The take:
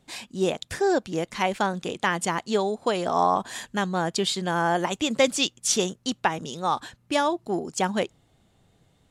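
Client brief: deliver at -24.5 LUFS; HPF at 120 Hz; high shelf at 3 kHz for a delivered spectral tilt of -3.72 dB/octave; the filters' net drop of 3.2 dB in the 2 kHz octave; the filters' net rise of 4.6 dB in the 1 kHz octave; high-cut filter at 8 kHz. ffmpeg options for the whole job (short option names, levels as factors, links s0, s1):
-af "highpass=120,lowpass=8000,equalizer=f=1000:t=o:g=7.5,equalizer=f=2000:t=o:g=-4.5,highshelf=f=3000:g=-8"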